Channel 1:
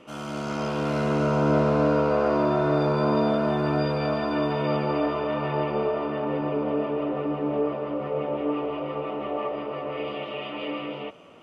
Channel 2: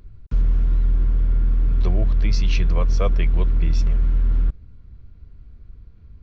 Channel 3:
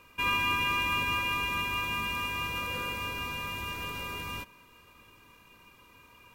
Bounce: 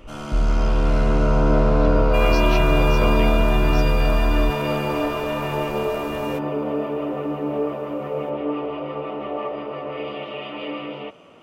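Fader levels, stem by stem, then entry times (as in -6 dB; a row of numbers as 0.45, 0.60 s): +1.5, -1.5, +1.0 dB; 0.00, 0.00, 1.95 s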